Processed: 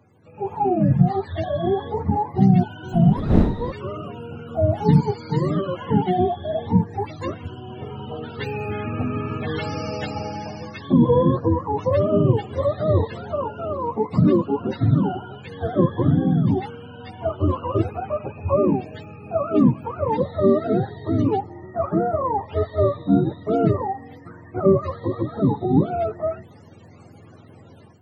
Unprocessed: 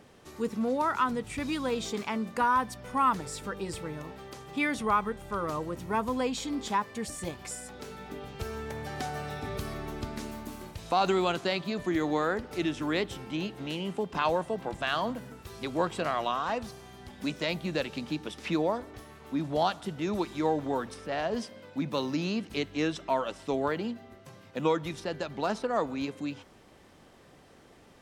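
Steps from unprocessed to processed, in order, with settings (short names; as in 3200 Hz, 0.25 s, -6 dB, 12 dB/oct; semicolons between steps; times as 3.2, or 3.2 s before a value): spectrum mirrored in octaves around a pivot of 430 Hz; 2.92–3.7 wind noise 210 Hz -26 dBFS; AGC gain up to 11.5 dB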